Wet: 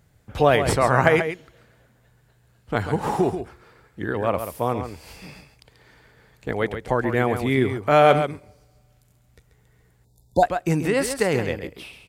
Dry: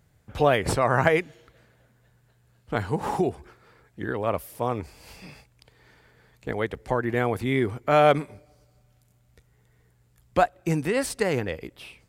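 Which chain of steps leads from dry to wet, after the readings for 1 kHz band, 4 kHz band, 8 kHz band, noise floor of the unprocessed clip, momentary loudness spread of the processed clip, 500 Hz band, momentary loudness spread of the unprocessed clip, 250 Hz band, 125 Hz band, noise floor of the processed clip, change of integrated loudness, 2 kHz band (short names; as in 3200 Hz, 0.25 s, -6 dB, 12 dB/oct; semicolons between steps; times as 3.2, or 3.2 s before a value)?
+3.5 dB, +3.5 dB, +3.5 dB, -63 dBFS, 19 LU, +3.5 dB, 15 LU, +3.5 dB, +3.5 dB, -60 dBFS, +3.5 dB, +3.5 dB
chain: echo 0.136 s -9 dB; spectral delete 10.05–10.43, 970–3500 Hz; gain +3 dB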